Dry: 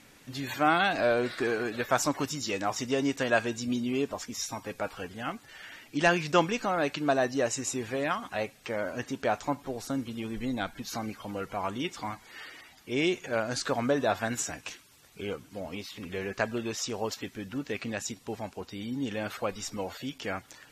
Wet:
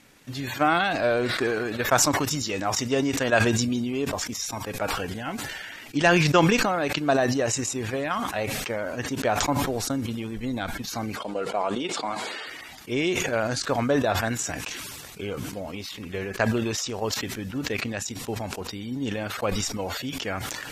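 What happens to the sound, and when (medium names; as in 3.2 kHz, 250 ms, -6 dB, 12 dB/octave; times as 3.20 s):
5.05–5.70 s: Butterworth band-stop 1.2 kHz, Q 7.6
11.16–12.47 s: cabinet simulation 230–9100 Hz, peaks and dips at 440 Hz +5 dB, 630 Hz +6 dB, 1.9 kHz -5 dB, 4 kHz +3 dB, 6 kHz -6 dB
whole clip: dynamic bell 100 Hz, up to +5 dB, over -49 dBFS, Q 1.5; transient shaper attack +5 dB, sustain -9 dB; decay stretcher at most 24 dB/s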